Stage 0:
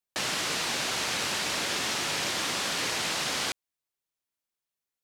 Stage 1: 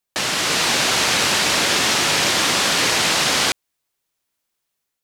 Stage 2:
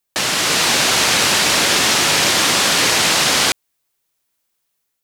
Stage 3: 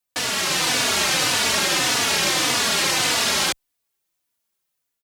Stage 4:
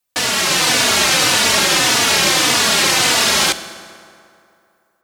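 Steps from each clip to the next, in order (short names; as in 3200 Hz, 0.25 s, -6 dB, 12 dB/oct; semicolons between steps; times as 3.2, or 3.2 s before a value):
AGC gain up to 4 dB; gain +8 dB
high shelf 9500 Hz +5 dB; gain +2.5 dB
endless flanger 3.4 ms -1.7 Hz; gain -2.5 dB
reverb RT60 2.6 s, pre-delay 5 ms, DRR 12 dB; gain +6 dB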